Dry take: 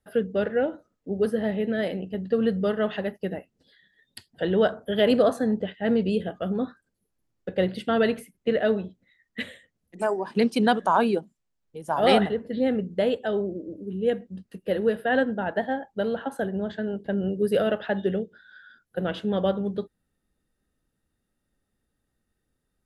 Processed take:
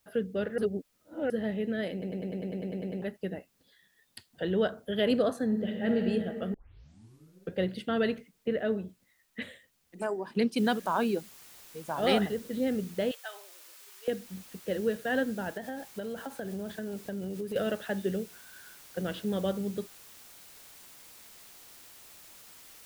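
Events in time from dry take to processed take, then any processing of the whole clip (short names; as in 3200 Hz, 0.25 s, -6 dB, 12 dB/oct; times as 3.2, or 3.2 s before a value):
0.58–1.3 reverse
1.92 stutter in place 0.10 s, 11 plays
5.45–6.02 reverb throw, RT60 2.6 s, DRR 2 dB
6.54 tape start 1.02 s
8.18–9.42 air absorption 240 m
10.58 noise floor step -69 dB -48 dB
13.11–14.08 HPF 860 Hz 24 dB/oct
15.57–17.56 compressor, threshold -27 dBFS
whole clip: dynamic EQ 810 Hz, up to -5 dB, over -36 dBFS, Q 1.1; gain -4.5 dB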